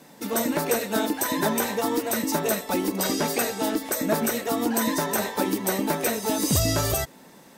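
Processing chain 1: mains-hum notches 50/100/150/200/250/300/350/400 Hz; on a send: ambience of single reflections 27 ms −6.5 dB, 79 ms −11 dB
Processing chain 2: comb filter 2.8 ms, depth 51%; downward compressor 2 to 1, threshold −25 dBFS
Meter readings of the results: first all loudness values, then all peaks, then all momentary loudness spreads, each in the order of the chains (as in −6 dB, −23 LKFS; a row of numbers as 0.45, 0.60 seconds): −24.0, −27.0 LKFS; −8.0, −13.5 dBFS; 4, 2 LU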